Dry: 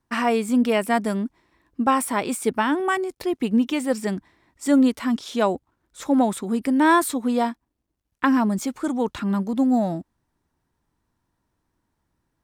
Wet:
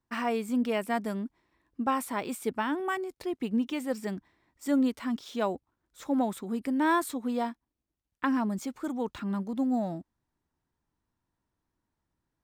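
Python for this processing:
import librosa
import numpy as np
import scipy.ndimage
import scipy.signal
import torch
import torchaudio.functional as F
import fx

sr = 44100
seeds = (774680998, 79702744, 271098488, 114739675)

y = np.interp(np.arange(len(x)), np.arange(len(x))[::2], x[::2])
y = F.gain(torch.from_numpy(y), -8.5).numpy()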